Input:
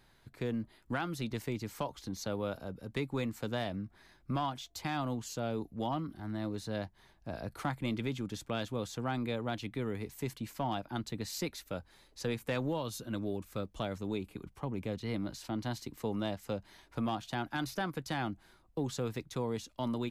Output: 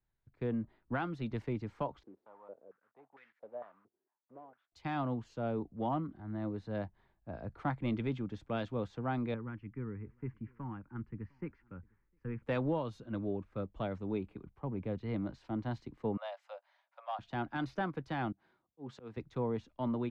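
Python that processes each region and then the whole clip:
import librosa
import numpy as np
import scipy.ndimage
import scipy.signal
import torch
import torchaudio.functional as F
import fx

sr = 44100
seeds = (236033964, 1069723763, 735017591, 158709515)

y = fx.chain(x, sr, fx.block_float(bits=3),
    fx.filter_held_bandpass(hz=4.4, low_hz=380.0, high_hz=1800.0), at=(2.03, 4.72))
y = fx.chain(y, sr, fx.air_absorb(metres=270.0),
    fx.fixed_phaser(hz=1600.0, stages=4),
    fx.echo_single(ms=706, db=-24.0), at=(9.34, 12.43))
y = fx.chain(y, sr, fx.steep_highpass(hz=540.0, slope=96),
    fx.quant_float(bits=8), at=(16.17, 17.19))
y = fx.chain(y, sr, fx.highpass(hz=150.0, slope=12),
    fx.auto_swell(attack_ms=128.0), at=(18.32, 19.17))
y = scipy.signal.sosfilt(scipy.signal.bessel(2, 1600.0, 'lowpass', norm='mag', fs=sr, output='sos'), y)
y = fx.band_widen(y, sr, depth_pct=70)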